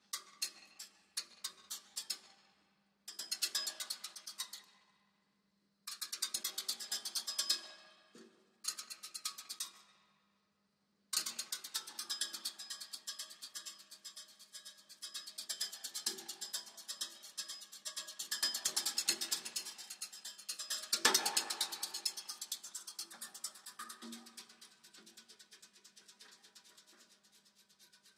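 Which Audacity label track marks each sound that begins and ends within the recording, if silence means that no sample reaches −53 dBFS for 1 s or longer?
5.870000	9.810000	sound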